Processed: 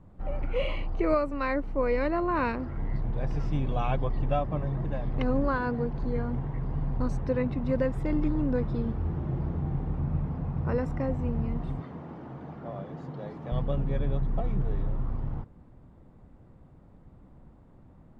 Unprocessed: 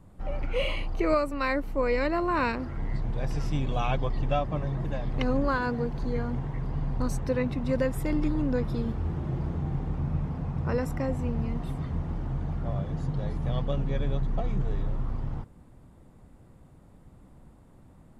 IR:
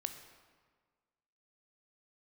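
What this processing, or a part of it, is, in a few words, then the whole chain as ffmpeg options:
through cloth: -filter_complex "[0:a]asettb=1/sr,asplit=3[a][b][c];[a]atrim=end=11.804[d];[b]atrim=start=11.8:end=13.52,asetpts=PTS-STARTPTS,afade=t=in:d=0.004:c=qsin,afade=t=out:st=1.716:d=0.004:c=qsin,highpass=240[e];[c]atrim=start=13.516[f];[d][e]acrossfade=d=0.004:c1=hsin:c2=qsin[g];[g][f]acrossfade=d=0.004:c1=qsin:c2=hsin,lowpass=6.8k,highshelf=f=3k:g=-12"

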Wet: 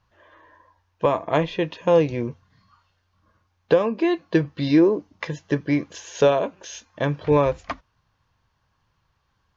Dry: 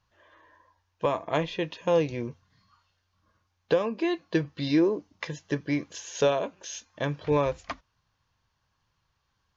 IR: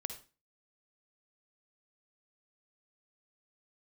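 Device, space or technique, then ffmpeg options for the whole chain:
behind a face mask: -af "highshelf=f=3.2k:g=-8,volume=6.5dB"

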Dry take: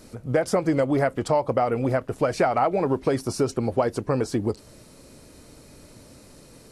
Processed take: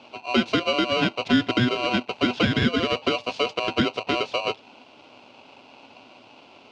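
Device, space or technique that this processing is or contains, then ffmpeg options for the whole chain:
ring modulator pedal into a guitar cabinet: -af "aeval=exprs='val(0)*sgn(sin(2*PI*860*n/s))':c=same,highpass=91,equalizer=f=110:t=q:w=4:g=8,equalizer=f=250:t=q:w=4:g=9,equalizer=f=1.2k:t=q:w=4:g=-9,equalizer=f=1.8k:t=q:w=4:g=-9,equalizer=f=2.7k:t=q:w=4:g=7,lowpass=f=4.3k:w=0.5412,lowpass=f=4.3k:w=1.3066"

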